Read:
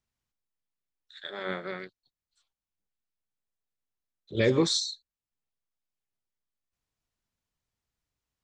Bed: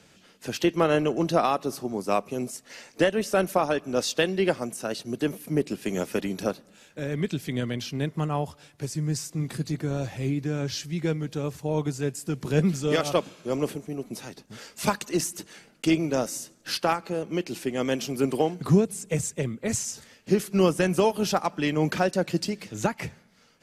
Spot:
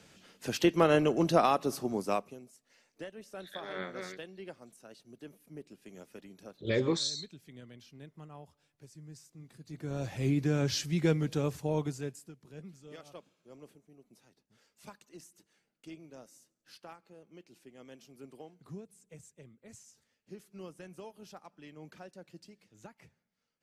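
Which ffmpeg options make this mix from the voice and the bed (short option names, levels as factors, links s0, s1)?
-filter_complex "[0:a]adelay=2300,volume=0.531[s0];[1:a]volume=8.91,afade=t=out:st=1.95:d=0.45:silence=0.105925,afade=t=in:st=9.65:d=0.76:silence=0.0841395,afade=t=out:st=11.32:d=1.03:silence=0.0562341[s1];[s0][s1]amix=inputs=2:normalize=0"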